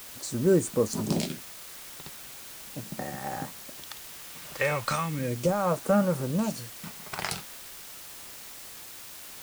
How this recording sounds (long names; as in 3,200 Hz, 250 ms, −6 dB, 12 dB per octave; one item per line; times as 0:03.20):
phaser sweep stages 2, 0.38 Hz, lowest notch 240–3,800 Hz
a quantiser's noise floor 8 bits, dither triangular